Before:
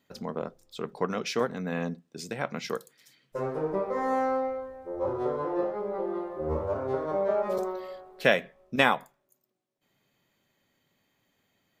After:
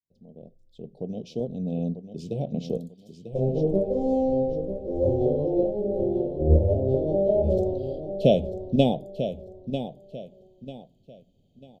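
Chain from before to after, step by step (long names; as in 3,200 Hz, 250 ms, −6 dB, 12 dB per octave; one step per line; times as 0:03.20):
fade in at the beginning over 3.41 s
elliptic band-stop filter 670–3,100 Hz, stop band 50 dB
RIAA equalisation playback
on a send: repeating echo 944 ms, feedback 31%, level −9.5 dB
on the sum: every ending faded ahead of time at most 360 dB per second
level +3 dB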